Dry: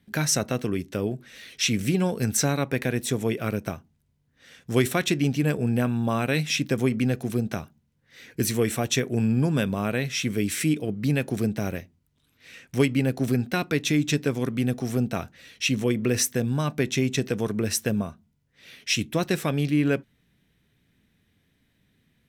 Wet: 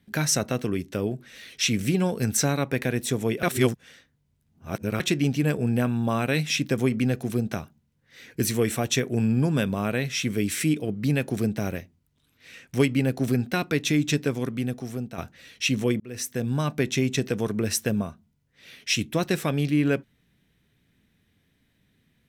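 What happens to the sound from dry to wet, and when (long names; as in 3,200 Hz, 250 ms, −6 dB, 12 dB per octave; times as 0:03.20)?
0:03.43–0:05.00: reverse
0:14.19–0:15.18: fade out, to −10.5 dB
0:16.00–0:16.55: fade in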